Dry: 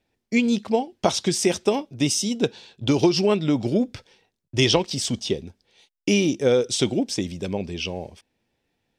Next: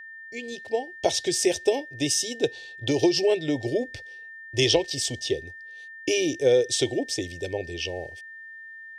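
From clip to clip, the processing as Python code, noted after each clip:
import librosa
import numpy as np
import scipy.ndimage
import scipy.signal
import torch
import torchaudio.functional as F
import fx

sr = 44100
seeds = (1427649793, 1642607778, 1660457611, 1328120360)

y = fx.fade_in_head(x, sr, length_s=1.13)
y = fx.fixed_phaser(y, sr, hz=490.0, stages=4)
y = y + 10.0 ** (-40.0 / 20.0) * np.sin(2.0 * np.pi * 1800.0 * np.arange(len(y)) / sr)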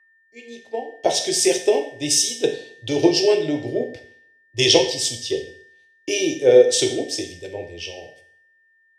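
y = fx.highpass(x, sr, hz=150.0, slope=6)
y = fx.rev_double_slope(y, sr, seeds[0], early_s=0.73, late_s=2.1, knee_db=-25, drr_db=2.5)
y = fx.band_widen(y, sr, depth_pct=70)
y = y * 10.0 ** (2.0 / 20.0)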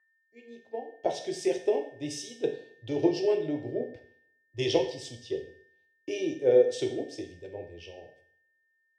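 y = fx.lowpass(x, sr, hz=1200.0, slope=6)
y = y * 10.0 ** (-8.0 / 20.0)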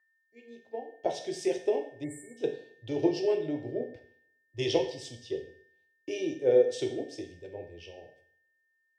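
y = fx.spec_erase(x, sr, start_s=2.04, length_s=0.33, low_hz=2300.0, high_hz=7100.0)
y = y * 10.0 ** (-1.5 / 20.0)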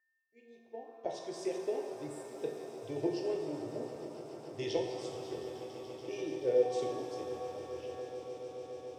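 y = fx.peak_eq(x, sr, hz=3200.0, db=-4.5, octaves=0.39)
y = fx.echo_swell(y, sr, ms=143, loudest=8, wet_db=-18)
y = fx.rev_shimmer(y, sr, seeds[1], rt60_s=2.9, semitones=7, shimmer_db=-8, drr_db=5.5)
y = y * 10.0 ** (-7.5 / 20.0)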